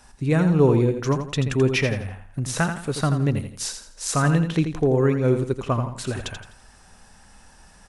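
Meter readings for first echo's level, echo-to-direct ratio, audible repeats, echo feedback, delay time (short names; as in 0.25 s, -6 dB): -8.0 dB, -7.5 dB, 3, 34%, 84 ms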